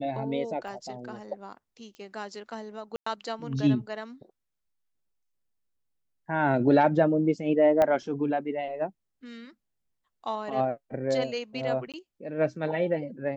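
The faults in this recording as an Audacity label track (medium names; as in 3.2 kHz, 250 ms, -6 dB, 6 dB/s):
0.680000	0.680000	dropout 3.3 ms
1.950000	1.950000	pop -33 dBFS
2.960000	3.060000	dropout 104 ms
7.820000	7.820000	pop -12 dBFS
11.920000	11.940000	dropout 17 ms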